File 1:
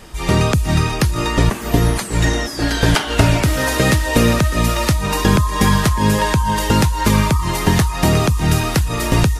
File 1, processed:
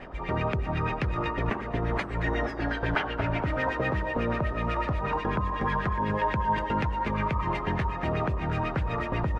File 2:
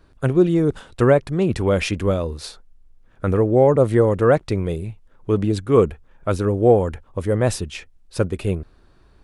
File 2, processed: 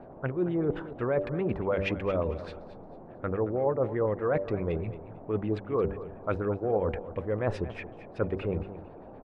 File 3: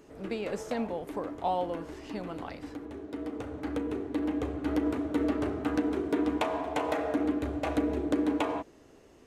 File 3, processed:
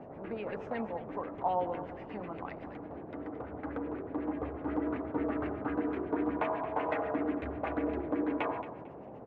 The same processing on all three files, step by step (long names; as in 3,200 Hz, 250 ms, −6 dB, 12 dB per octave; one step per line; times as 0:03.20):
hum removal 97.47 Hz, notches 6
dynamic equaliser 520 Hz, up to +4 dB, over −30 dBFS, Q 0.96
reversed playback
downward compressor 6 to 1, threshold −21 dBFS
reversed playback
auto-filter low-pass sine 8.1 Hz 940–2,500 Hz
noise in a band 86–740 Hz −42 dBFS
on a send: repeating echo 224 ms, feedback 25%, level −14 dB
on the sum: level −5.5 dB